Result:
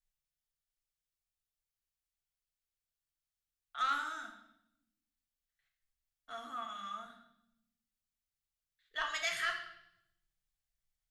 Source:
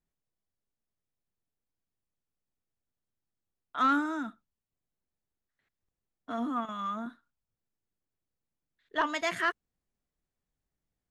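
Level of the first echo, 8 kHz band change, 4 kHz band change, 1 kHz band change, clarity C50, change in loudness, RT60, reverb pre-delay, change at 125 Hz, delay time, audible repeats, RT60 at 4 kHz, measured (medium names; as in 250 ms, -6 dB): no echo, no reading, +0.5 dB, -7.5 dB, 6.5 dB, -6.0 dB, 0.80 s, 3 ms, no reading, no echo, no echo, 0.80 s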